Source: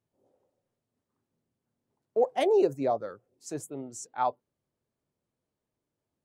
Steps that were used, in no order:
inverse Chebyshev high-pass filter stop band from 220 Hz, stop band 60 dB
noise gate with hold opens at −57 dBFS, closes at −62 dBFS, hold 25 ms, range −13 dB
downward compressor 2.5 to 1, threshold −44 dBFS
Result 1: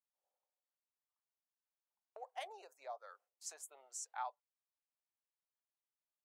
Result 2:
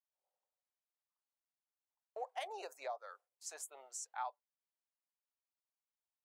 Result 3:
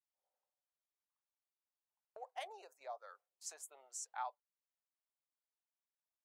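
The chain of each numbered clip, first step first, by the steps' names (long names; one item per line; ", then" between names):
noise gate with hold, then downward compressor, then inverse Chebyshev high-pass filter
inverse Chebyshev high-pass filter, then noise gate with hold, then downward compressor
downward compressor, then inverse Chebyshev high-pass filter, then noise gate with hold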